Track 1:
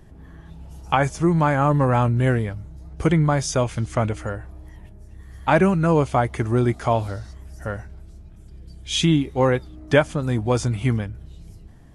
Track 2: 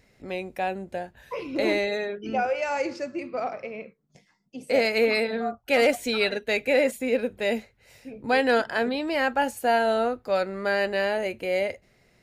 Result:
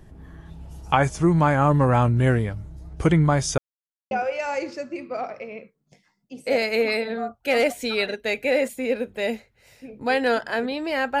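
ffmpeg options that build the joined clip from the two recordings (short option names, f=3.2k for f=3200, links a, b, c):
-filter_complex "[0:a]apad=whole_dur=11.2,atrim=end=11.2,asplit=2[a][b];[a]atrim=end=3.58,asetpts=PTS-STARTPTS,afade=t=out:st=3.576:d=0.004:c=hsin[c];[b]atrim=start=3.58:end=4.11,asetpts=PTS-STARTPTS,volume=0[d];[1:a]atrim=start=2.34:end=9.43,asetpts=PTS-STARTPTS,afade=t=in:d=0.004:c=hsin[e];[c][d][e]concat=n=3:v=0:a=1"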